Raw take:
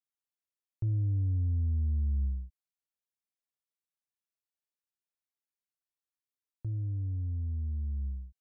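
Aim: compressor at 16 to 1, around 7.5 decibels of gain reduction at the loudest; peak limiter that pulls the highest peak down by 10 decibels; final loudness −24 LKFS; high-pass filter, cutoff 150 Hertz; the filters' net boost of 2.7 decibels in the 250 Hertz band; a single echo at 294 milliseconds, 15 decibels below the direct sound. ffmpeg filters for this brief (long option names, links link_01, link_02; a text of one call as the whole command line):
ffmpeg -i in.wav -af "highpass=150,equalizer=frequency=250:width_type=o:gain=4,acompressor=threshold=-42dB:ratio=16,alimiter=level_in=19.5dB:limit=-24dB:level=0:latency=1,volume=-19.5dB,aecho=1:1:294:0.178,volume=25dB" out.wav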